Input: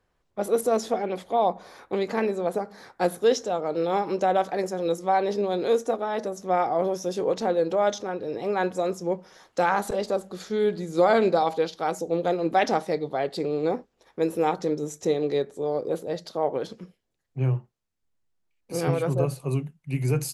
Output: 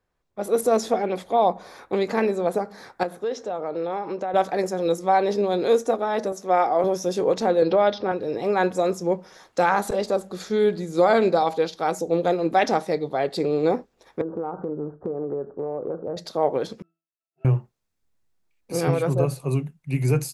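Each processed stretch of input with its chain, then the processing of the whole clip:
3.03–4.34 LPF 1600 Hz 6 dB/oct + low shelf 360 Hz -7.5 dB + compressor 3:1, threshold -28 dBFS
6.32–6.84 HPF 130 Hz + tone controls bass -8 dB, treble -1 dB
7.62–8.12 Chebyshev low-pass 5000 Hz, order 5 + three-band squash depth 70%
14.21–16.17 steep low-pass 1500 Hz 72 dB/oct + compressor 10:1, threshold -29 dBFS
16.82–17.45 CVSD 64 kbps + HPF 710 Hz + octave resonator E, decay 0.29 s
whole clip: notch 3000 Hz, Q 18; AGC gain up to 10 dB; gain -5 dB

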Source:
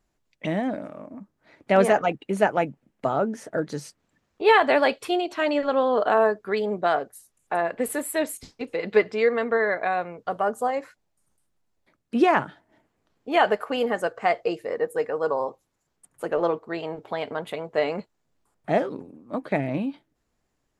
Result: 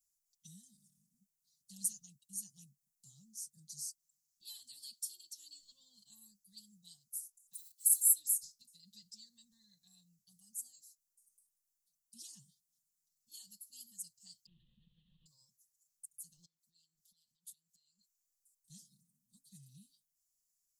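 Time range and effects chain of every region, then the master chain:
7.53–8.13 steep high-pass 910 Hz 48 dB/oct + comb 2 ms, depth 100% + short-mantissa float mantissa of 4-bit
14.46–15.26 delta modulation 16 kbps, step -22.5 dBFS + air absorption 380 m
16.45–18.7 bell 150 Hz -12 dB 1 oct + compressor 12:1, threshold -39 dBFS
whole clip: inverse Chebyshev band-stop 370–2400 Hz, stop band 50 dB; pre-emphasis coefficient 0.97; comb 5.5 ms, depth 99%

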